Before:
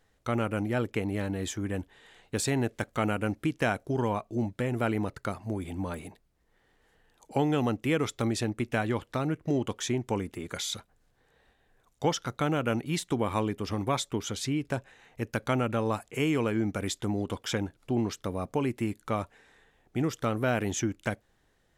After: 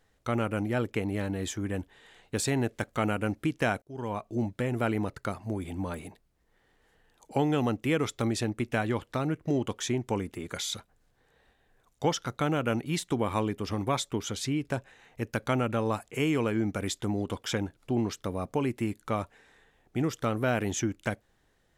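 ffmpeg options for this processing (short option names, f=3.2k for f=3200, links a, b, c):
-filter_complex "[0:a]asplit=2[a][b];[a]atrim=end=3.82,asetpts=PTS-STARTPTS,afade=t=out:st=3.816:d=0.004:c=hsin[c];[b]atrim=start=3.82,asetpts=PTS-STARTPTS,afade=t=in:d=0.47[d];[c][d]concat=n=2:v=0:a=1"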